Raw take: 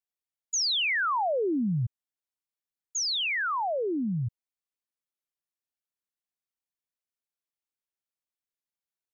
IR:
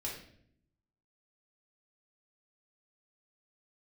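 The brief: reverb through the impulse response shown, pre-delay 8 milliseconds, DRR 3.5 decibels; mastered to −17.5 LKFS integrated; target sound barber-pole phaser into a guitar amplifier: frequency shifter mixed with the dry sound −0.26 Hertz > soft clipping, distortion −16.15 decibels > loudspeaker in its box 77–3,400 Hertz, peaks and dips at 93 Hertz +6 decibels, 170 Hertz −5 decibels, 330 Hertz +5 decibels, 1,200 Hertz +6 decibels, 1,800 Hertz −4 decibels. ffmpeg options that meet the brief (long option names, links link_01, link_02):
-filter_complex "[0:a]asplit=2[link_01][link_02];[1:a]atrim=start_sample=2205,adelay=8[link_03];[link_02][link_03]afir=irnorm=-1:irlink=0,volume=-4.5dB[link_04];[link_01][link_04]amix=inputs=2:normalize=0,asplit=2[link_05][link_06];[link_06]afreqshift=-0.26[link_07];[link_05][link_07]amix=inputs=2:normalize=1,asoftclip=threshold=-23.5dB,highpass=77,equalizer=frequency=93:width_type=q:width=4:gain=6,equalizer=frequency=170:width_type=q:width=4:gain=-5,equalizer=frequency=330:width_type=q:width=4:gain=5,equalizer=frequency=1200:width_type=q:width=4:gain=6,equalizer=frequency=1800:width_type=q:width=4:gain=-4,lowpass=frequency=3400:width=0.5412,lowpass=frequency=3400:width=1.3066,volume=13dB"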